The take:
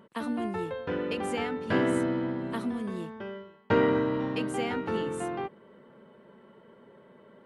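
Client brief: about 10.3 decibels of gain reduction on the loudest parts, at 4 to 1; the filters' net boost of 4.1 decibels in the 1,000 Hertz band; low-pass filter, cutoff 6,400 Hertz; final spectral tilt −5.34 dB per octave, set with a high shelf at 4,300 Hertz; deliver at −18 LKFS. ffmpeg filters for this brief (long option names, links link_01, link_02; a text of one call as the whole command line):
ffmpeg -i in.wav -af "lowpass=6400,equalizer=frequency=1000:width_type=o:gain=5.5,highshelf=frequency=4300:gain=-7.5,acompressor=threshold=-30dB:ratio=4,volume=16.5dB" out.wav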